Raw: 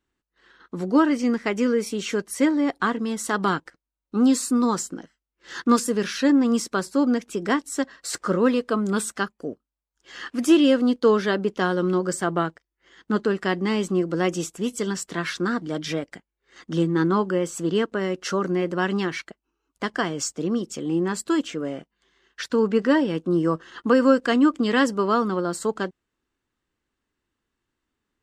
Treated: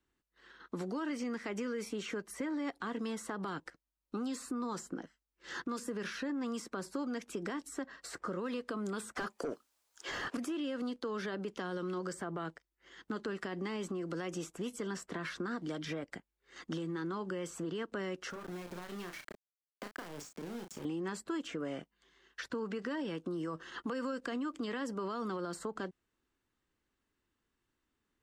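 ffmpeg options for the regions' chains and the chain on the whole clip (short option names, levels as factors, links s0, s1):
-filter_complex "[0:a]asettb=1/sr,asplit=3[s0][s1][s2];[s0]atrim=end=9.154[s3];[s1]atrim=start=9.15:end=10.37,asetpts=PTS-STARTPTS,afade=t=in:d=0.004:c=qsin,afade=t=out:st=1.216:d=0.004:c=qsin,bass=f=250:g=-7,treble=f=4000:g=14,asplit=2[s4][s5];[s5]highpass=f=720:p=1,volume=22.4,asoftclip=type=tanh:threshold=0.376[s6];[s4][s6]amix=inputs=2:normalize=0,lowpass=f=1800:p=1,volume=0.501[s7];[s2]atrim=start=10.366[s8];[s3][s7]acrossfade=d=0.004:c1=hsin:c2=qsin[s9];[s9][s8]acrossfade=d=0.004:c1=qsin:c2=hsin,asettb=1/sr,asplit=3[s10][s11][s12];[s10]atrim=end=18.304[s13];[s11]atrim=start=18.3:end=20.85,asetpts=PTS-STARTPTS,afade=t=in:d=0.004:c=qsin,afade=t=out:st=2.546:d=0.004:c=qsin,acompressor=threshold=0.0158:ratio=16:attack=3.2:release=140:knee=1:detection=peak,aeval=exprs='val(0)*gte(abs(val(0)),0.00891)':c=same,asplit=2[s14][s15];[s15]adelay=34,volume=0.473[s16];[s14][s16]amix=inputs=2:normalize=0,atrim=end_sample=112455[s17];[s12]atrim=start=20.846[s18];[s13][s17]acrossfade=d=0.004:c1=hsin:c2=qsin[s19];[s19][s18]acrossfade=d=0.004:c1=qsin:c2=hsin,acompressor=threshold=0.112:ratio=6,alimiter=limit=0.0891:level=0:latency=1:release=61,acrossover=split=280|940|2100[s20][s21][s22][s23];[s20]acompressor=threshold=0.00891:ratio=4[s24];[s21]acompressor=threshold=0.0141:ratio=4[s25];[s22]acompressor=threshold=0.00891:ratio=4[s26];[s23]acompressor=threshold=0.00447:ratio=4[s27];[s24][s25][s26][s27]amix=inputs=4:normalize=0,volume=0.708"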